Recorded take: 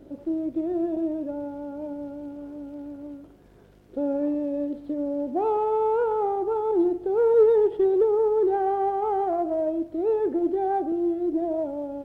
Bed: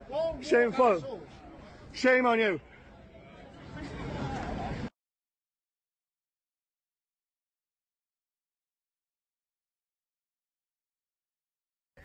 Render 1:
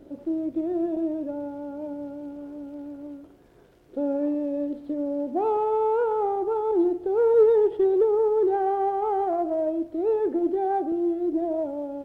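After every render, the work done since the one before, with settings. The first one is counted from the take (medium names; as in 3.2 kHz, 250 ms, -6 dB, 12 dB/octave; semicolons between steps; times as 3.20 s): de-hum 50 Hz, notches 5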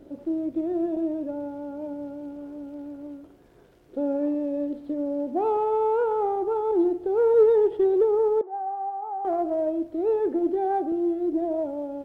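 8.41–9.25 s: ladder band-pass 800 Hz, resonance 60%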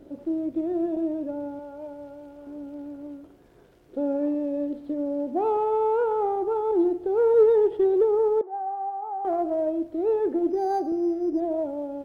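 1.59–2.47 s: peaking EQ 230 Hz -14 dB 1 oct; 10.50–11.40 s: decimation joined by straight lines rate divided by 8×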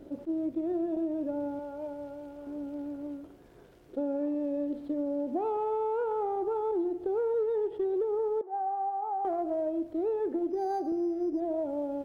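compression, threshold -28 dBFS, peak gain reduction 13 dB; attacks held to a fixed rise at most 530 dB/s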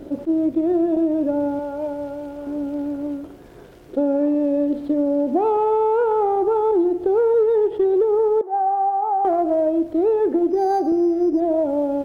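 trim +12 dB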